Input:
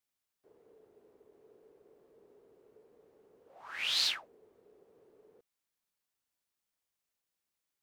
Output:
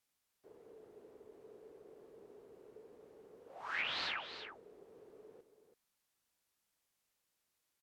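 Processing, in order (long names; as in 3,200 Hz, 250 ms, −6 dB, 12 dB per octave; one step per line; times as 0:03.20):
treble cut that deepens with the level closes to 1,600 Hz, closed at −35 dBFS
single-tap delay 332 ms −10 dB
level +4.5 dB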